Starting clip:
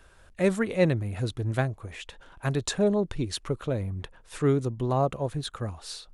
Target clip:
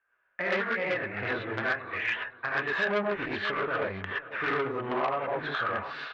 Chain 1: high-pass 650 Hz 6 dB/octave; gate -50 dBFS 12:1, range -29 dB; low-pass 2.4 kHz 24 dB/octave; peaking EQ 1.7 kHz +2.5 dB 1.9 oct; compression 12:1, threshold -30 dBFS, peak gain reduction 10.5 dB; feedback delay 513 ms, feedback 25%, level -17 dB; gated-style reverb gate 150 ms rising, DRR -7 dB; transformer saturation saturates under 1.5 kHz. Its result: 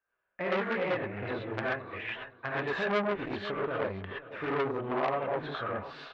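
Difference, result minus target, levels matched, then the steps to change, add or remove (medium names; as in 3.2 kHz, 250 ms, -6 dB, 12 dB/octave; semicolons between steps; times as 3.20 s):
2 kHz band -3.5 dB
change: peaking EQ 1.7 kHz +13.5 dB 1.9 oct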